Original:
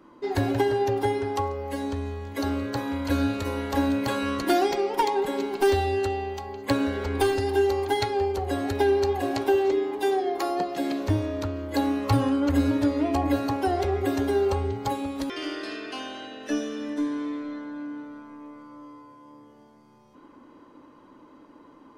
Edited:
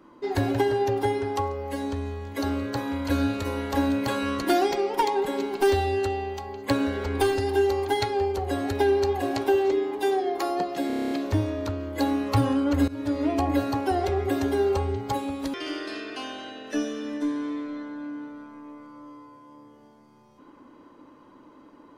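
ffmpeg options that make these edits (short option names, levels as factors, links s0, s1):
-filter_complex "[0:a]asplit=10[s0][s1][s2][s3][s4][s5][s6][s7][s8][s9];[s0]atrim=end=10.902[s10];[s1]atrim=start=10.868:end=10.902[s11];[s2]atrim=start=10.868:end=10.902[s12];[s3]atrim=start=10.868:end=10.902[s13];[s4]atrim=start=10.868:end=10.902[s14];[s5]atrim=start=10.868:end=10.902[s15];[s6]atrim=start=10.868:end=10.902[s16];[s7]atrim=start=10.868:end=10.902[s17];[s8]atrim=start=10.868:end=12.64,asetpts=PTS-STARTPTS,afade=t=out:st=1.768:d=0.004:c=hsin:silence=0.105925[s18];[s9]atrim=start=12.64,asetpts=PTS-STARTPTS,afade=t=in:d=0.36:silence=0.105925[s19];[s10][s11]acrossfade=d=0.004:c1=hsin:c2=hsin[s20];[s20][s12]acrossfade=d=0.004:c1=hsin:c2=hsin[s21];[s21][s13]acrossfade=d=0.004:c1=hsin:c2=hsin[s22];[s22][s14]acrossfade=d=0.004:c1=hsin:c2=hsin[s23];[s23][s15]acrossfade=d=0.004:c1=hsin:c2=hsin[s24];[s24][s16]acrossfade=d=0.004:c1=hsin:c2=hsin[s25];[s25][s17]acrossfade=d=0.004:c1=hsin:c2=hsin[s26];[s18][s19]concat=n=2:v=0:a=1[s27];[s26][s27]acrossfade=d=0.004:c1=hsin:c2=hsin"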